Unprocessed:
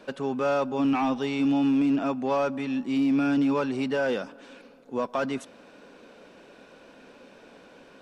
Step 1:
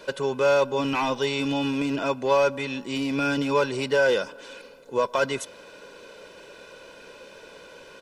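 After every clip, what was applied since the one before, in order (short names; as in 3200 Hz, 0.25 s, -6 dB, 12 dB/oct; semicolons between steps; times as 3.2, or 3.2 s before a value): high shelf 2900 Hz +8.5 dB; comb 2 ms, depth 62%; gain +2 dB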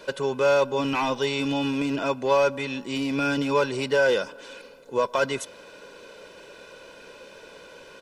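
nothing audible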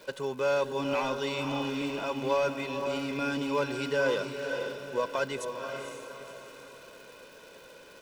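crackle 400/s -38 dBFS; diffused feedback echo 0.507 s, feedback 43%, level -5.5 dB; gain -7 dB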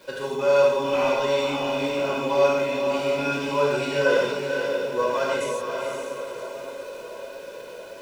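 narrowing echo 0.683 s, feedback 71%, band-pass 520 Hz, level -9.5 dB; non-linear reverb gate 0.19 s flat, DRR -5.5 dB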